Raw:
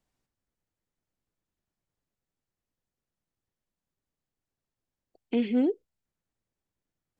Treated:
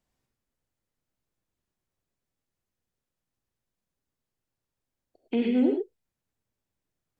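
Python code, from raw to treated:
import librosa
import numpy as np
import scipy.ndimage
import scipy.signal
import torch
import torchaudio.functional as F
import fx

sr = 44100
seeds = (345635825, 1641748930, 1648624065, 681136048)

y = fx.vibrato(x, sr, rate_hz=8.5, depth_cents=24.0)
y = fx.rev_gated(y, sr, seeds[0], gate_ms=130, shape='rising', drr_db=3.0)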